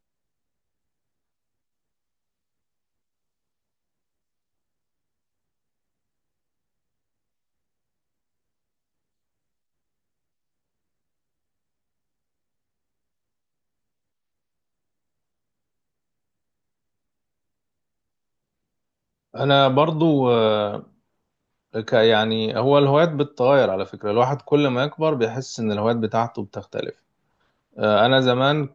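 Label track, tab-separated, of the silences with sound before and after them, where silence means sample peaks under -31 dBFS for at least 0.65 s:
20.800000	21.750000	silence
26.900000	27.780000	silence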